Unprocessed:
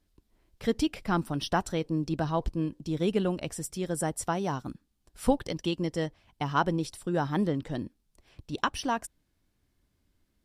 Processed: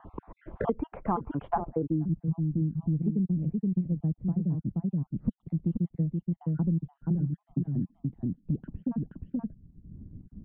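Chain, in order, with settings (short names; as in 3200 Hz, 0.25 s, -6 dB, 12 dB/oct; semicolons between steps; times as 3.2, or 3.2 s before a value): random spectral dropouts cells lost 39%; on a send: echo 0.476 s -5.5 dB; on the sum: low-pass sweep 1000 Hz -> 180 Hz, 1.5–2.08; steep low-pass 3600 Hz; three-band squash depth 100%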